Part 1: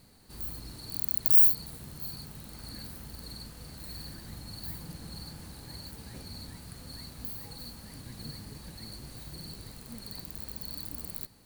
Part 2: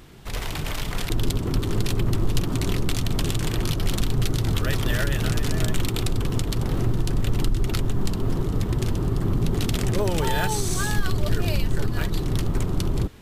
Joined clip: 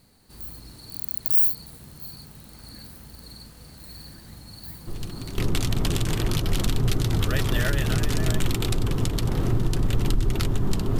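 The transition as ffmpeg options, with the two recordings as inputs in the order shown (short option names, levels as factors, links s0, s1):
-filter_complex "[1:a]asplit=2[s0][s1];[0:a]apad=whole_dur=10.99,atrim=end=10.99,atrim=end=5.382[s2];[s1]atrim=start=2.718:end=8.33[s3];[s0]atrim=start=2.21:end=2.72,asetpts=PTS-STARTPTS,volume=0.266,afade=t=in:d=0.004:c=hsin,afade=t=out:st=0.506:d=0.004:c=hsin,adelay=4870[s4];[s2][s3]acrossfade=d=0.004:c1=hsin:c2=hsin[s5];[s5][s4]amix=inputs=2:normalize=0"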